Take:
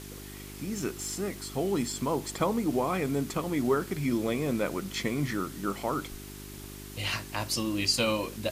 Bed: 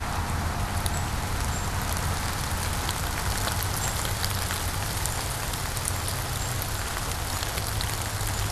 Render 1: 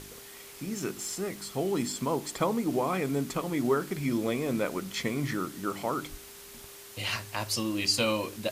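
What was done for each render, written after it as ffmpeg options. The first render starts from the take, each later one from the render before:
-af "bandreject=f=50:t=h:w=4,bandreject=f=100:t=h:w=4,bandreject=f=150:t=h:w=4,bandreject=f=200:t=h:w=4,bandreject=f=250:t=h:w=4,bandreject=f=300:t=h:w=4,bandreject=f=350:t=h:w=4"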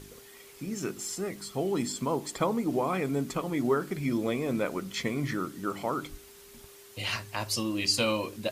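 -af "afftdn=nr=6:nf=-48"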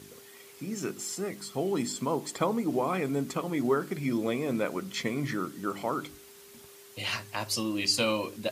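-af "highpass=110"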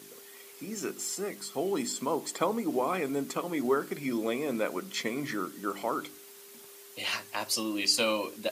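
-af "highpass=240,highshelf=f=10k:g=5"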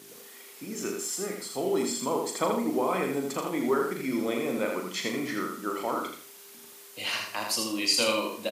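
-filter_complex "[0:a]asplit=2[a][b];[b]adelay=38,volume=-7dB[c];[a][c]amix=inputs=2:normalize=0,asplit=2[d][e];[e]aecho=0:1:81|162|243|324:0.596|0.167|0.0467|0.0131[f];[d][f]amix=inputs=2:normalize=0"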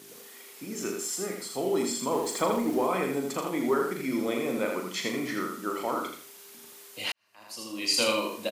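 -filter_complex "[0:a]asettb=1/sr,asplit=3[a][b][c];[a]atrim=end=2.124[d];[b]atrim=start=2.12:end=2.87,asetpts=PTS-STARTPTS,afade=t=in:d=0.004:c=qsin,afade=t=out:st=0.746:d=0.004:c=qsin,aeval=exprs='val(0)+0.5*0.00944*sgn(val(0))':c=same[e];[c]atrim=start=2.866[f];[d][e]acrossfade=d=0.004:c1=hsin:c2=qsin[g];[g][f]acrossfade=d=0.004:c1=qsin:c2=hsin,asplit=2[h][i];[h]atrim=end=7.12,asetpts=PTS-STARTPTS,afade=t=out:st=7.116:d=0.004:c=hsin[j];[i]atrim=start=7.12,asetpts=PTS-STARTPTS,afade=t=in:d=0.87:c=qua[k];[j][k]concat=n=2:v=0:a=1"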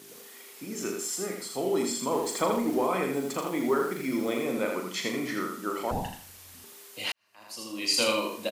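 -filter_complex "[0:a]asettb=1/sr,asplit=3[a][b][c];[a]atrim=end=3.154[d];[b]atrim=start=3.15:end=4.44,asetpts=PTS-STARTPTS,afade=t=in:d=0.004:c=qsin,afade=t=out:st=1.286:d=0.004:c=qsin,acrusher=bits=7:mix=0:aa=0.5[e];[c]atrim=start=4.436[f];[d][e]acrossfade=d=0.004:c1=hsin:c2=qsin[g];[g][f]acrossfade=d=0.004:c1=qsin:c2=hsin,asettb=1/sr,asplit=3[h][i][j];[h]atrim=end=5.914[k];[i]atrim=start=5.91:end=6.64,asetpts=PTS-STARTPTS,afade=t=in:d=0.004:c=qsin,afade=t=out:st=0.726:d=0.004:c=qsin,afreqshift=-490[l];[j]atrim=start=6.636[m];[k][l]acrossfade=d=0.004:c1=hsin:c2=qsin[n];[n][m]acrossfade=d=0.004:c1=qsin:c2=hsin"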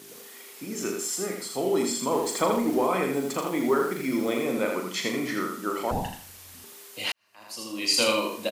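-af "volume=2.5dB"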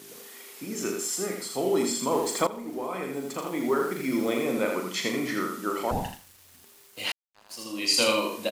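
-filter_complex "[0:a]asettb=1/sr,asplit=3[a][b][c];[a]atrim=end=5.974[d];[b]atrim=start=5.97:end=7.66,asetpts=PTS-STARTPTS,afade=t=in:d=0.004:c=qsin,afade=t=out:st=1.686:d=0.004:c=qsin,aeval=exprs='sgn(val(0))*max(abs(val(0))-0.00447,0)':c=same[e];[c]atrim=start=7.656[f];[d][e]acrossfade=d=0.004:c1=hsin:c2=qsin[g];[g][f]acrossfade=d=0.004:c1=qsin:c2=hsin,asplit=2[h][i];[h]atrim=end=2.47,asetpts=PTS-STARTPTS,afade=t=out:st=2.466:d=0.004:c=hsin:silence=0.177828[j];[i]atrim=start=2.47,asetpts=PTS-STARTPTS,afade=t=in:d=1.7:silence=0.177828[k];[j][k]concat=n=2:v=0:a=1"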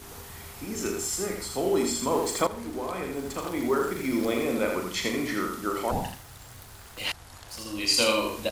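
-filter_complex "[1:a]volume=-18dB[a];[0:a][a]amix=inputs=2:normalize=0"

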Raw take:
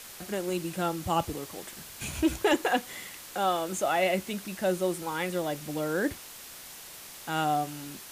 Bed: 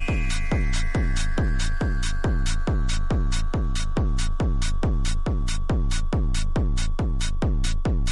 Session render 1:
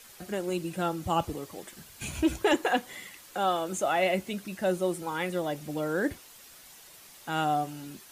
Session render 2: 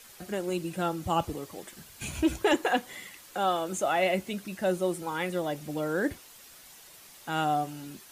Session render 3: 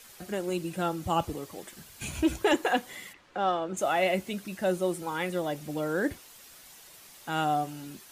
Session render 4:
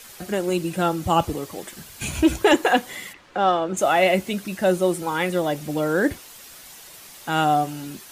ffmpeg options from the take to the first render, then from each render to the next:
-af "afftdn=nr=8:nf=-46"
-af anull
-filter_complex "[0:a]asplit=3[a][b][c];[a]afade=t=out:st=3.12:d=0.02[d];[b]adynamicsmooth=sensitivity=1.5:basefreq=2.7k,afade=t=in:st=3.12:d=0.02,afade=t=out:st=3.76:d=0.02[e];[c]afade=t=in:st=3.76:d=0.02[f];[d][e][f]amix=inputs=3:normalize=0"
-af "volume=8dB"

